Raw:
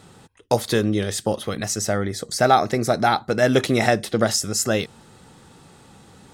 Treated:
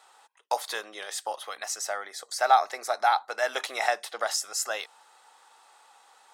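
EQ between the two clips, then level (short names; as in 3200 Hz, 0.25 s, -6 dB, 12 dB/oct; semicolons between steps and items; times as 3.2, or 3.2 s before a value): ladder high-pass 690 Hz, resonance 40%; +1.5 dB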